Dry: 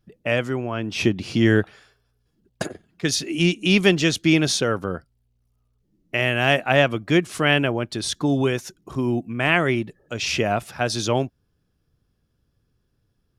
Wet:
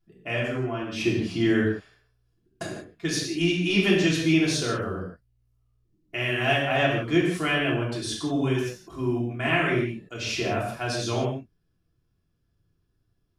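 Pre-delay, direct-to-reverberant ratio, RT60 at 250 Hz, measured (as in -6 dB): 3 ms, -5.5 dB, n/a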